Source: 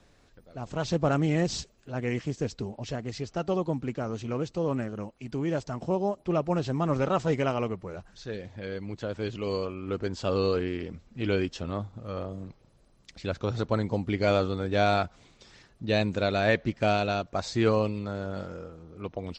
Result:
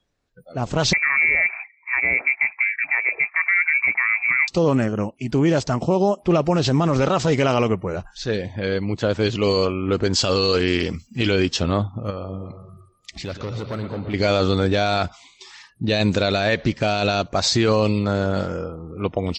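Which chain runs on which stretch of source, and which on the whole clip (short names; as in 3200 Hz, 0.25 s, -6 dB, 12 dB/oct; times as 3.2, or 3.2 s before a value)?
0.93–4.48 block floating point 5-bit + HPF 130 Hz + inverted band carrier 2500 Hz
10.13–11.31 high shelf 2100 Hz +8 dB + notch 3700 Hz, Q 18
12.1–14.14 hard clip -23.5 dBFS + compressor 3:1, threshold -42 dBFS + analogue delay 0.117 s, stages 4096, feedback 77%, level -10 dB
whole clip: spectral noise reduction 26 dB; dynamic EQ 4800 Hz, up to +7 dB, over -49 dBFS, Q 0.76; maximiser +21 dB; gain -8.5 dB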